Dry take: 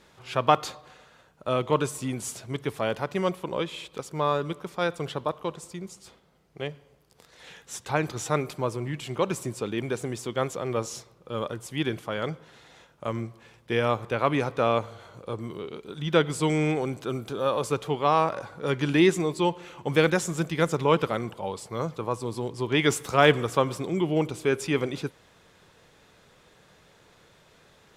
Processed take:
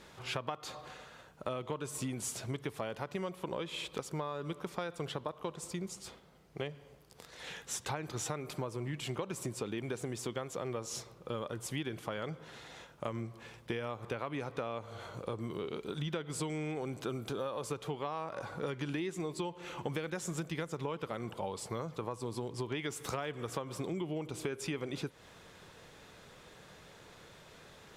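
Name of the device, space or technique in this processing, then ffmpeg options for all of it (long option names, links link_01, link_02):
serial compression, leveller first: -af "acompressor=threshold=-26dB:ratio=3,acompressor=threshold=-37dB:ratio=5,volume=2dB"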